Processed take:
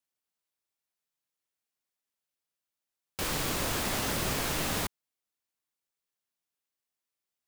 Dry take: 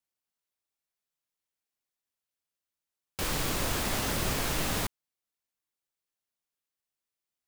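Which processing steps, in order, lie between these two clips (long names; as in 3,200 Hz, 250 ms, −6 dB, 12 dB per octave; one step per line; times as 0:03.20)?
low-shelf EQ 64 Hz −7 dB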